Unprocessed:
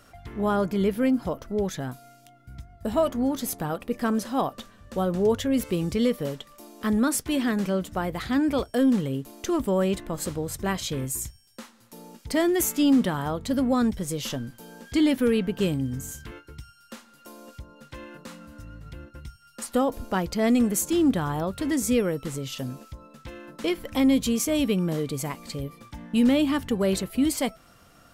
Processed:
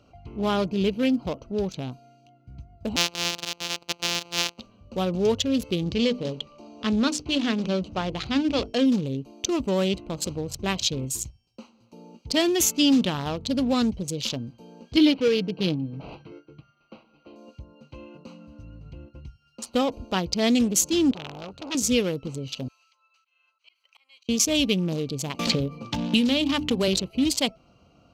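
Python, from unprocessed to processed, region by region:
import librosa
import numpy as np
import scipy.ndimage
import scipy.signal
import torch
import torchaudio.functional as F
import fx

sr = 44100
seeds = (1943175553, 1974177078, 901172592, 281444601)

y = fx.chain(x, sr, fx.sample_sort(block=256),
    fx.highpass(hz=1000.0, slope=6),
    fx.high_shelf(hz=7600.0, db=-2.5), at=(2.96, 4.59))
y = fx.chain(y, sr, fx.law_mismatch(coded='mu'),
    fx.lowpass(hz=6300.0, slope=12),
    fx.hum_notches(base_hz=50, count=9), at=(5.84, 8.86))
y = fx.chain(y, sr, fx.highpass(hz=170.0, slope=12),
    fx.comb(ms=6.3, depth=0.57),
    fx.resample_linear(factor=6), at=(14.96, 17.36))
y = fx.chain(y, sr, fx.low_shelf(hz=280.0, db=-6.5),
    fx.transformer_sat(knee_hz=2100.0), at=(21.11, 21.75))
y = fx.chain(y, sr, fx.highpass(hz=1400.0, slope=24),
    fx.auto_swell(attack_ms=479.0), at=(22.68, 24.29))
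y = fx.chain(y, sr, fx.hum_notches(base_hz=50, count=7),
    fx.band_squash(depth_pct=100), at=(25.39, 26.88))
y = fx.wiener(y, sr, points=25)
y = scipy.signal.sosfilt(scipy.signal.butter(2, 43.0, 'highpass', fs=sr, output='sos'), y)
y = fx.band_shelf(y, sr, hz=4100.0, db=13.0, octaves=1.7)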